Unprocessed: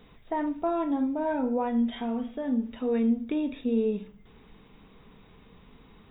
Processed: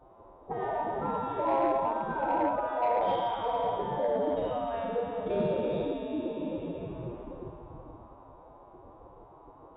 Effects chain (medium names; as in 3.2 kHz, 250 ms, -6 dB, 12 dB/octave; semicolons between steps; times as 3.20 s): spectral sustain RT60 2.74 s; ten-band graphic EQ 125 Hz +8 dB, 250 Hz +7 dB, 500 Hz +5 dB, 1 kHz +5 dB, 2 kHz -12 dB; repeats whose band climbs or falls 236 ms, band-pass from 330 Hz, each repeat 1.4 oct, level -7 dB; level-controlled noise filter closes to 840 Hz, open at -11.5 dBFS; time stretch by phase-locked vocoder 1.6×; high-pass 42 Hz; treble shelf 2.2 kHz -8 dB; in parallel at +1.5 dB: compression, threshold -23 dBFS, peak gain reduction 13 dB; on the sum: spectral gate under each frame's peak -15 dB weak; saturation -19 dBFS, distortion -20 dB